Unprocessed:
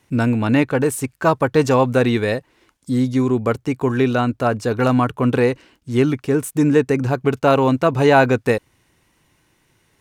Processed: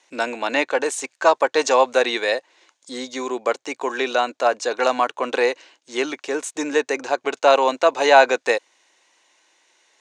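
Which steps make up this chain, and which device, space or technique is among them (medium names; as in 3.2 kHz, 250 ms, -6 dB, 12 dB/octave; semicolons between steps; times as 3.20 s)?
phone speaker on a table (cabinet simulation 430–7800 Hz, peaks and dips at 430 Hz -6 dB, 1.3 kHz -5 dB, 3.9 kHz +4 dB, 6.6 kHz +7 dB); trim +3 dB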